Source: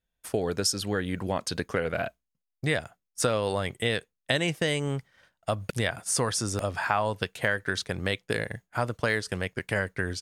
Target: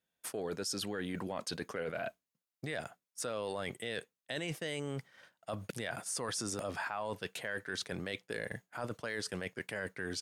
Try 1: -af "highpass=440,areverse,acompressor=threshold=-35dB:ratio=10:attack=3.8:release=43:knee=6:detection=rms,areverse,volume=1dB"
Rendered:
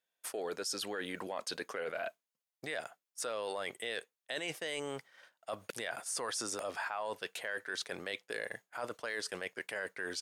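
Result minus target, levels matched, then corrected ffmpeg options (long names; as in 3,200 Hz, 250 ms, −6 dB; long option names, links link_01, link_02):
125 Hz band −12.0 dB
-af "highpass=170,areverse,acompressor=threshold=-35dB:ratio=10:attack=3.8:release=43:knee=6:detection=rms,areverse,volume=1dB"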